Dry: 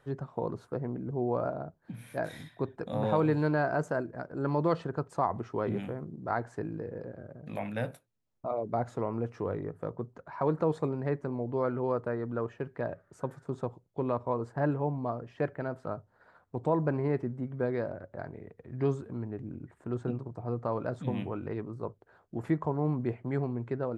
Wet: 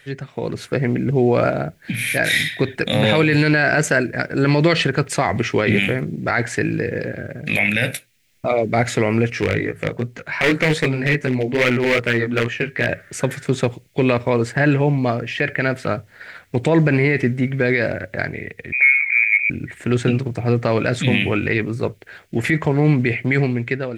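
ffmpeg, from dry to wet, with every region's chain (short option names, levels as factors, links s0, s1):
-filter_complex "[0:a]asettb=1/sr,asplit=3[s0][s1][s2];[s0]atrim=end=9.304[s3];[s1]atrim=start=9.3:end=12.89,asetpts=PTS-STARTPTS,afade=t=in:d=0.004:c=qsin,afade=t=out:st=3.586:d=0.004:c=qsin,flanger=delay=16:depth=4.2:speed=2.5,asoftclip=type=hard:threshold=0.0376[s4];[s2]atrim=start=12.886[s5];[s3][s4]acrossfade=d=0.004:c1=hsin:c2=qsin[s6];[s6][s5]acrossfade=d=0.004:c1=qsin:c2=hsin,asettb=1/sr,asplit=3[s7][s8][s9];[s7]atrim=end=18.724[s10];[s8]atrim=start=18.72:end=19.5,asetpts=PTS-STARTPTS,afade=t=in:d=0.004:c=qsin,afade=t=out:st=0.776:d=0.004:c=qsin,highpass=f=1000:p=1,lowpass=f=2200:t=q:w=0.5098,lowpass=f=2200:t=q:w=0.6013,lowpass=f=2200:t=q:w=0.9,lowpass=f=2200:t=q:w=2.563,afreqshift=-2600[s11];[s9]atrim=start=19.496[s12];[s10][s11]acrossfade=d=0.004:c1=hsin:c2=qsin[s13];[s13][s12]acrossfade=d=0.004:c1=qsin:c2=hsin,highshelf=f=1500:t=q:w=3:g=12.5,dynaudnorm=f=140:g=9:m=3.16,alimiter=limit=0.224:level=0:latency=1:release=35,volume=2.24"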